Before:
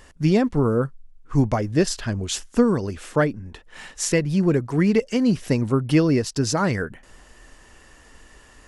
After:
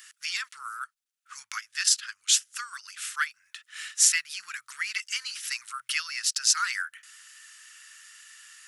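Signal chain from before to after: elliptic high-pass 1300 Hz, stop band 50 dB; tilt +3 dB/oct; 0.79–3.12 transient shaper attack +1 dB, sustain -7 dB; gain -1 dB

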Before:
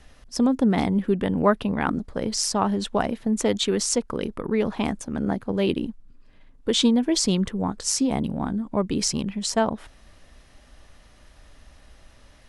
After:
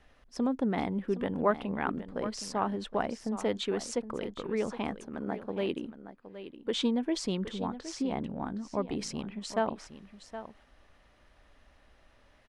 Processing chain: 5.07–6.73 low shelf 94 Hz -11.5 dB; 7.76–8.44 LPF 5700 Hz 12 dB/oct; tone controls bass -6 dB, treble -11 dB; echo 0.767 s -12.5 dB; gain -6.5 dB

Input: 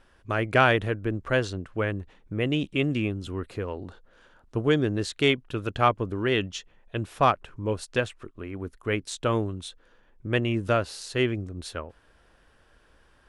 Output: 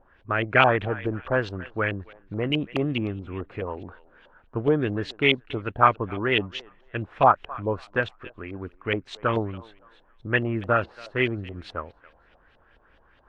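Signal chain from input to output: thinning echo 0.28 s, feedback 35%, high-pass 740 Hz, level -18 dB; LFO low-pass saw up 4.7 Hz 660–3400 Hz; gain -1 dB; AAC 48 kbps 48000 Hz

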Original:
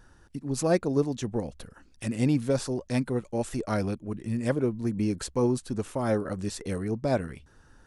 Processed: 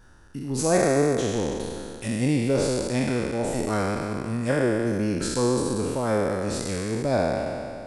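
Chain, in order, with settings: spectral trails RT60 2.35 s

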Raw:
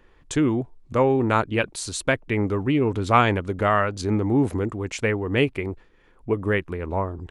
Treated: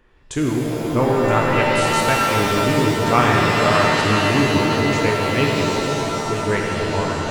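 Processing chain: echo with dull and thin repeats by turns 0.487 s, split 900 Hz, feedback 52%, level -7 dB; shimmer reverb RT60 2.9 s, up +7 st, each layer -2 dB, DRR -1 dB; gain -1 dB

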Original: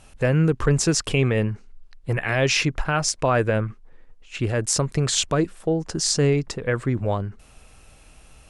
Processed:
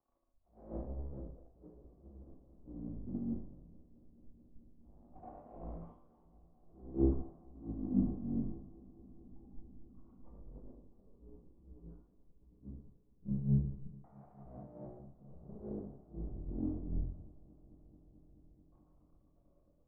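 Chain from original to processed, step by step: median-filter separation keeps harmonic; fuzz box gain 44 dB, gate -51 dBFS; steep low-pass 3100 Hz 36 dB/oct; limiter -16.5 dBFS, peak gain reduction 8.5 dB; overloaded stage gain 21 dB; resonator bank C2 minor, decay 0.47 s; LFO low-pass saw down 0.5 Hz 350–1900 Hz; expander -18 dBFS; on a send: swelling echo 93 ms, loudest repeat 5, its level -17.5 dB; on the sum: speed mistake 78 rpm record played at 33 rpm; three-band expander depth 100%; gain +12.5 dB

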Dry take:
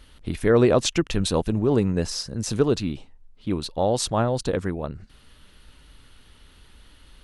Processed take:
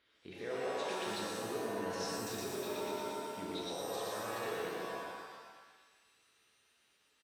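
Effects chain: Doppler pass-by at 2.22, 25 m/s, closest 1.3 m; HPF 150 Hz 12 dB/oct; high shelf 5300 Hz -9 dB; feedback echo 0.117 s, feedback 51%, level -3.5 dB; compressor 6:1, threshold -51 dBFS, peak gain reduction 22.5 dB; limiter -47.5 dBFS, peak gain reduction 7.5 dB; bell 2100 Hz +13.5 dB 2.7 oct; small resonant body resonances 420/3800 Hz, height 8 dB, ringing for 20 ms; shimmer reverb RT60 1.2 s, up +7 st, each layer -2 dB, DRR -1 dB; gain +5.5 dB

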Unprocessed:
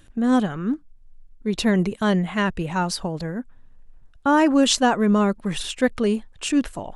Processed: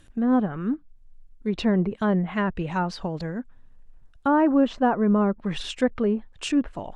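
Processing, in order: treble ducked by the level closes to 1300 Hz, closed at -17 dBFS; gain -2 dB

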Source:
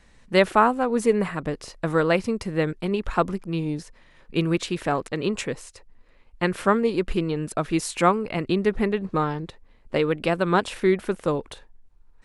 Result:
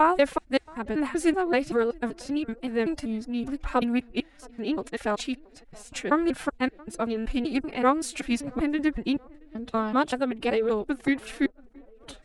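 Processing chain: slices in reverse order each 0.191 s, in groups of 4; tape echo 0.676 s, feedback 59%, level -23 dB, low-pass 1000 Hz; formant-preserving pitch shift +6.5 st; gain -2.5 dB

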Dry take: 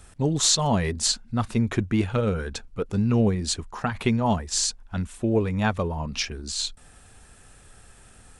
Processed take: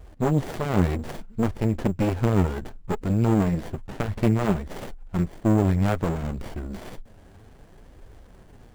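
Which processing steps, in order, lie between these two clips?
speed mistake 25 fps video run at 24 fps; flange 0.62 Hz, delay 1.7 ms, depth 9.3 ms, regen +26%; tube stage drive 24 dB, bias 0.6; in parallel at -5 dB: sample-rate reducer 7500 Hz, jitter 0%; on the sum: dynamic EQ 4400 Hz, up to -6 dB, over -43 dBFS, Q 0.78; running maximum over 33 samples; gain +7.5 dB

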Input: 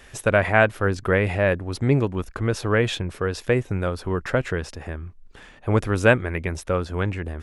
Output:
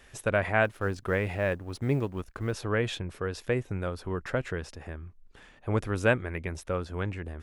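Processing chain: 0.64–2.53 G.711 law mismatch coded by A; gain -7.5 dB

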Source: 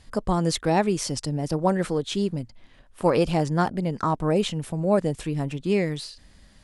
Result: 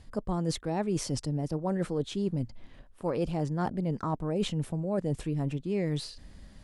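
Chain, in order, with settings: tilt shelf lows +4 dB, about 850 Hz; reverse; compressor, threshold -27 dBFS, peak gain reduction 13.5 dB; reverse

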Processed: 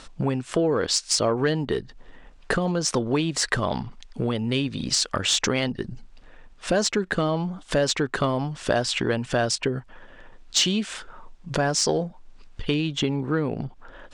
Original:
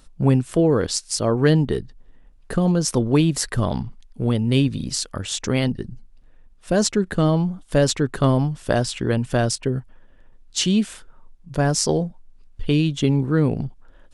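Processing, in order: LPF 8600 Hz 24 dB/oct; compressor 4:1, threshold -31 dBFS, peak gain reduction 16.5 dB; overdrive pedal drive 13 dB, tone 4600 Hz, clips at -12 dBFS, from 12.74 s tone 2600 Hz; gain +7 dB

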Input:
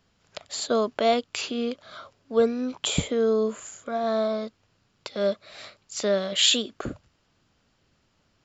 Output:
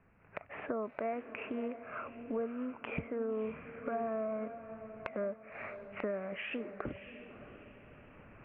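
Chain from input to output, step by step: recorder AGC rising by 6.4 dB/s; steep low-pass 2600 Hz 96 dB/oct; compressor 3:1, threshold -41 dBFS, peak gain reduction 18 dB; on a send: diffused feedback echo 0.625 s, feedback 40%, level -11 dB; on the sum: Doppler distortion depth 0.36 ms; gain +1 dB

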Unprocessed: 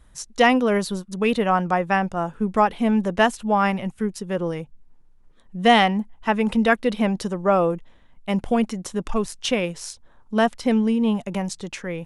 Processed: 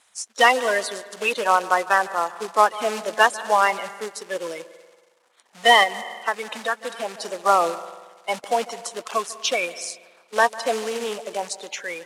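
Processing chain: bin magnitudes rounded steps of 30 dB; reverb RT60 1.3 s, pre-delay 0.148 s, DRR 15.5 dB; short-mantissa float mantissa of 2-bit; 5.83–7.26 compressor 6:1, threshold -22 dBFS, peak gain reduction 9.5 dB; Chebyshev band-pass 700–9100 Hz, order 2; gain +4 dB

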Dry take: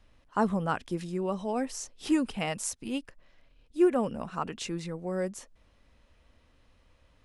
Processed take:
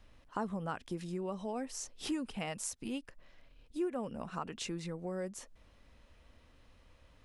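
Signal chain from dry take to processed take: compressor 2.5:1, threshold -40 dBFS, peak gain reduction 14.5 dB; gain +1 dB

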